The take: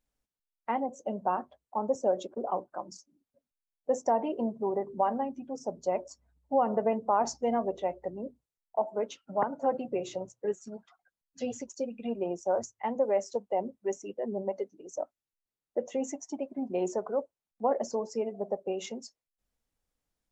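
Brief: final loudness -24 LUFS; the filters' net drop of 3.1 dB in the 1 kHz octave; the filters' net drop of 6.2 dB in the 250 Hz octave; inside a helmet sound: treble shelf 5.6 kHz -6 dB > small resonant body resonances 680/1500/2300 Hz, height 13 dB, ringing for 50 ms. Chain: peaking EQ 250 Hz -7.5 dB; peaking EQ 1 kHz -3.5 dB; treble shelf 5.6 kHz -6 dB; small resonant body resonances 680/1500/2300 Hz, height 13 dB, ringing for 50 ms; trim +7 dB

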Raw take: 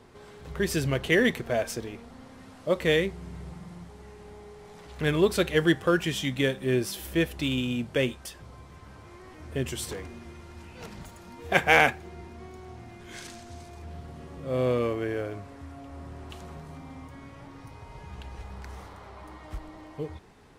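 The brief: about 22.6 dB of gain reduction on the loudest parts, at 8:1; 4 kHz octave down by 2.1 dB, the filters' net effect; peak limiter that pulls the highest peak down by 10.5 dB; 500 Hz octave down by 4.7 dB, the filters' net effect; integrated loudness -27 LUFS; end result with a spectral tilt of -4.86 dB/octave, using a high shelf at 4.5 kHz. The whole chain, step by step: peaking EQ 500 Hz -6 dB; peaking EQ 4 kHz -6.5 dB; treble shelf 4.5 kHz +7.5 dB; compression 8:1, threshold -40 dBFS; trim +20 dB; peak limiter -16.5 dBFS

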